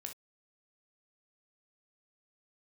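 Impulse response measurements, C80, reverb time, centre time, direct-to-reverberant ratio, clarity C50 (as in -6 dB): 45.5 dB, no single decay rate, 12 ms, 3.5 dB, 9.5 dB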